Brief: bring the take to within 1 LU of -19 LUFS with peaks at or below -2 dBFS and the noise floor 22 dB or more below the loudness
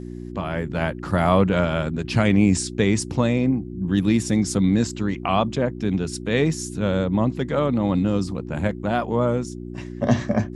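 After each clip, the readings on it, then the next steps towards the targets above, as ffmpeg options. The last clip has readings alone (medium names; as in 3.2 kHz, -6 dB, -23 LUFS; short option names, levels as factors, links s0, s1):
hum 60 Hz; highest harmonic 360 Hz; hum level -32 dBFS; loudness -22.0 LUFS; peak level -4.5 dBFS; loudness target -19.0 LUFS
-> -af "bandreject=f=60:t=h:w=4,bandreject=f=120:t=h:w=4,bandreject=f=180:t=h:w=4,bandreject=f=240:t=h:w=4,bandreject=f=300:t=h:w=4,bandreject=f=360:t=h:w=4"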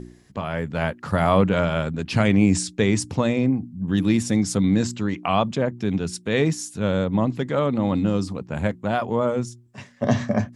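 hum not found; loudness -22.5 LUFS; peak level -4.5 dBFS; loudness target -19.0 LUFS
-> -af "volume=1.5,alimiter=limit=0.794:level=0:latency=1"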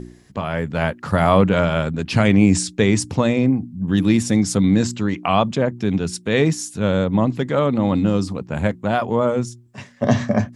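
loudness -19.0 LUFS; peak level -2.0 dBFS; noise floor -47 dBFS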